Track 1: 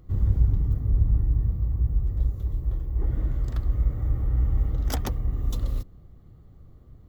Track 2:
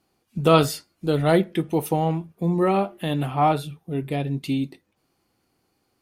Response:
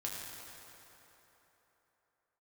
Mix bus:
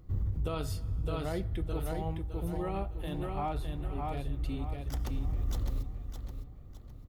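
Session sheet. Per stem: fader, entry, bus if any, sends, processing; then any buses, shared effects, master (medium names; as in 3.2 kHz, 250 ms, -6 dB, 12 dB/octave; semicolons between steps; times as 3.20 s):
-3.5 dB, 0.00 s, send -20 dB, echo send -11.5 dB, auto duck -17 dB, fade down 0.95 s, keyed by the second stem
-15.5 dB, 0.00 s, send -20.5 dB, echo send -4 dB, none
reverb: on, RT60 3.7 s, pre-delay 5 ms
echo: feedback delay 610 ms, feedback 33%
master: peak limiter -24.5 dBFS, peak gain reduction 9.5 dB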